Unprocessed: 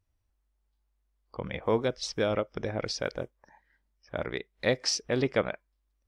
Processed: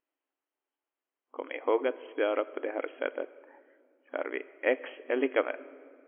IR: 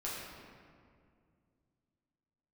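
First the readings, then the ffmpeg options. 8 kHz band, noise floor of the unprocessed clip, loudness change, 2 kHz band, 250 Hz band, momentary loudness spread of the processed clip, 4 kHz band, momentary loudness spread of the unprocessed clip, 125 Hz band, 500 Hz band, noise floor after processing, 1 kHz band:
under -40 dB, -76 dBFS, -1.5 dB, +0.5 dB, -2.5 dB, 13 LU, -13.5 dB, 12 LU, under -40 dB, 0.0 dB, under -85 dBFS, 0.0 dB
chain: -filter_complex "[0:a]asplit=2[a][b];[1:a]atrim=start_sample=2205,highshelf=f=5.8k:g=9[c];[b][c]afir=irnorm=-1:irlink=0,volume=-17.5dB[d];[a][d]amix=inputs=2:normalize=0,aeval=exprs='0.282*(cos(1*acos(clip(val(0)/0.282,-1,1)))-cos(1*PI/2))+0.00794*(cos(3*acos(clip(val(0)/0.282,-1,1)))-cos(3*PI/2))+0.00708*(cos(4*acos(clip(val(0)/0.282,-1,1)))-cos(4*PI/2))+0.00398*(cos(6*acos(clip(val(0)/0.282,-1,1)))-cos(6*PI/2))':c=same,afftfilt=real='re*between(b*sr/4096,250,3300)':imag='im*between(b*sr/4096,250,3300)':win_size=4096:overlap=0.75"

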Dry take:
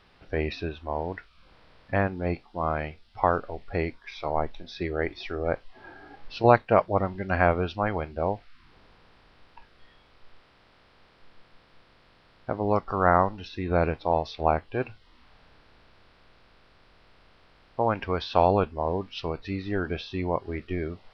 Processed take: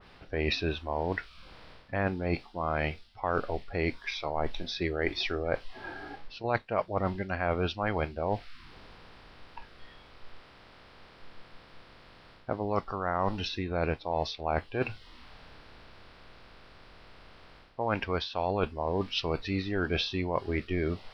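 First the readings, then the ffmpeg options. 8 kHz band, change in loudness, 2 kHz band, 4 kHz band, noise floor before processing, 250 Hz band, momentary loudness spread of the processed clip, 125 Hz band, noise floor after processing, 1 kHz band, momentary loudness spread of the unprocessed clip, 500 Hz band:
n/a, -4.5 dB, -2.0 dB, +5.5 dB, -59 dBFS, -3.0 dB, 13 LU, -3.5 dB, -55 dBFS, -7.0 dB, 13 LU, -5.5 dB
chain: -af "areverse,acompressor=threshold=-31dB:ratio=8,areverse,adynamicequalizer=threshold=0.00355:dfrequency=2200:dqfactor=0.7:tfrequency=2200:tqfactor=0.7:attack=5:release=100:ratio=0.375:range=2.5:mode=boostabove:tftype=highshelf,volume=5dB"

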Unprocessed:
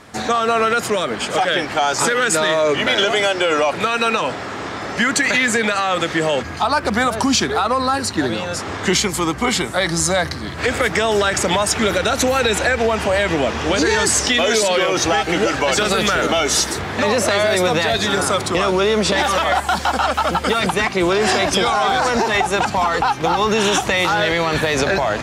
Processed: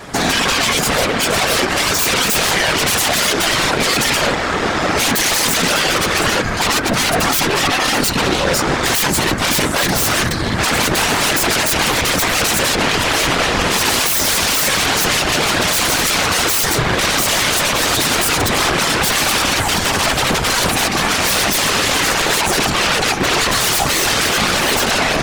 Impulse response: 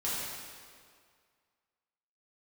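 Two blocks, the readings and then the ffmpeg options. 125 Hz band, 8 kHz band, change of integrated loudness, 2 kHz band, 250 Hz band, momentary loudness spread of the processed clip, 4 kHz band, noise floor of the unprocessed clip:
+4.0 dB, +6.5 dB, +3.0 dB, +3.0 dB, +0.5 dB, 2 LU, +6.0 dB, -28 dBFS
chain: -af "aeval=exprs='0.531*sin(PI/2*6.31*val(0)/0.531)':c=same,afftfilt=real='hypot(re,im)*cos(2*PI*random(0))':imag='hypot(re,im)*sin(2*PI*random(1))':win_size=512:overlap=0.75,aeval=exprs='0.891*(cos(1*acos(clip(val(0)/0.891,-1,1)))-cos(1*PI/2))+0.0891*(cos(5*acos(clip(val(0)/0.891,-1,1)))-cos(5*PI/2))+0.1*(cos(7*acos(clip(val(0)/0.891,-1,1)))-cos(7*PI/2))':c=same,volume=-1.5dB"

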